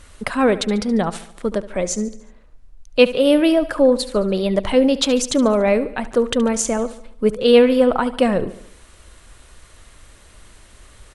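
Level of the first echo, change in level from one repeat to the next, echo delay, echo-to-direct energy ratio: −16.0 dB, −5.5 dB, 72 ms, −14.5 dB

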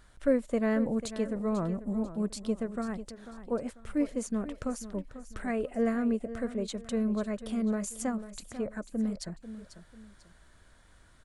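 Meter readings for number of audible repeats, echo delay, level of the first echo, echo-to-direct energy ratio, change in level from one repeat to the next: 2, 493 ms, −13.0 dB, −12.5 dB, −9.0 dB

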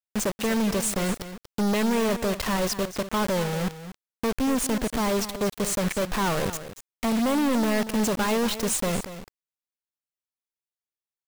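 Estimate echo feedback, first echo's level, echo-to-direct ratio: repeats not evenly spaced, −12.5 dB, −12.5 dB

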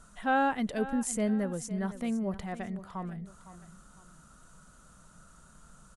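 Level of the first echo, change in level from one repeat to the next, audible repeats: −14.5 dB, −8.5 dB, 2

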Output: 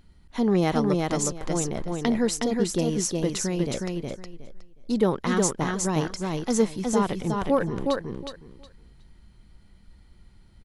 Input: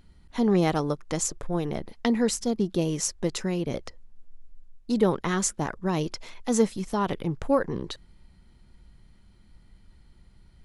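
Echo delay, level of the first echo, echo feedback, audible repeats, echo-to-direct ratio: 365 ms, −3.0 dB, 19%, 3, −3.0 dB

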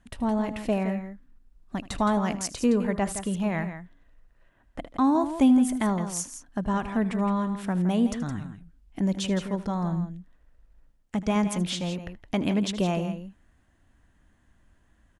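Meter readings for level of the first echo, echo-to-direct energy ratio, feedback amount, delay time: −17.0 dB, −9.5 dB, repeats not evenly spaced, 78 ms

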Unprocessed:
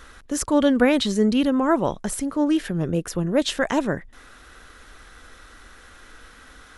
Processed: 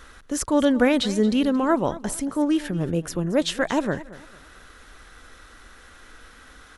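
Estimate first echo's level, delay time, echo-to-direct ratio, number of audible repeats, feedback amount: −17.5 dB, 226 ms, −17.0 dB, 2, 32%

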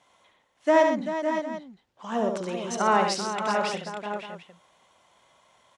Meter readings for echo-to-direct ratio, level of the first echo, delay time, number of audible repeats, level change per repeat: −1.0 dB, −5.5 dB, 71 ms, 5, repeats not evenly spaced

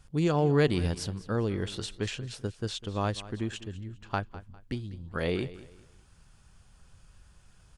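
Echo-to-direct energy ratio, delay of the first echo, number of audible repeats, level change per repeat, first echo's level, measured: −16.5 dB, 201 ms, 2, −10.5 dB, −17.0 dB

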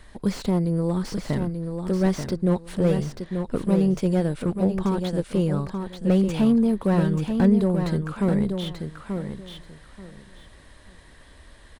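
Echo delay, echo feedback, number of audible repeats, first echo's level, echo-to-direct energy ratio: 885 ms, 20%, 3, −6.5 dB, −6.5 dB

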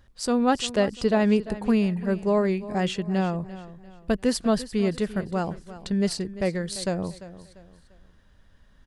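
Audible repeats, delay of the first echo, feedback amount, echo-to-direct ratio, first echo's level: 3, 345 ms, 36%, −15.0 dB, −15.5 dB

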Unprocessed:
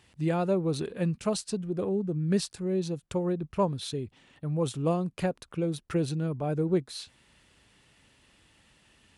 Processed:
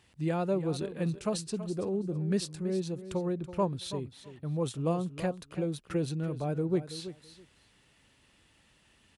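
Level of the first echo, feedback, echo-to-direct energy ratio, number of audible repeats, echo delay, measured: −13.0 dB, 17%, −13.0 dB, 2, 329 ms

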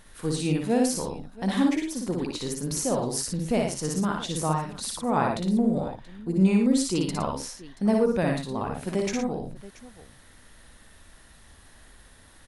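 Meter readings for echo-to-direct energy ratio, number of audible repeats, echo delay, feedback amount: −1.5 dB, 3, 58 ms, repeats not evenly spaced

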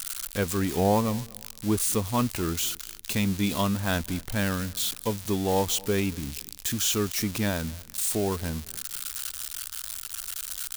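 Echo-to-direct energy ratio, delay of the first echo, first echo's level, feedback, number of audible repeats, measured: −22.5 dB, 237 ms, −23.0 dB, 30%, 2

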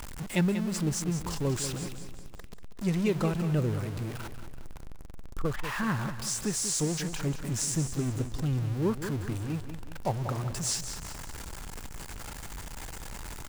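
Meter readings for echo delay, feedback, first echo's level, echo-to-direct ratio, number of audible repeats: 189 ms, 44%, −10.0 dB, −9.0 dB, 4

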